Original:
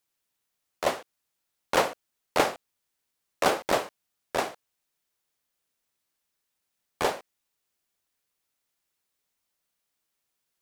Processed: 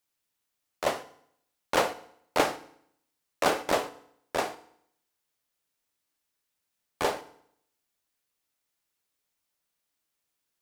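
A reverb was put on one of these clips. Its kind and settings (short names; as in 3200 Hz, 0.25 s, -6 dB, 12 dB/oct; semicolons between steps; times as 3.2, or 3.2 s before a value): FDN reverb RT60 0.68 s, low-frequency decay 1.1×, high-frequency decay 0.9×, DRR 11 dB; gain -1.5 dB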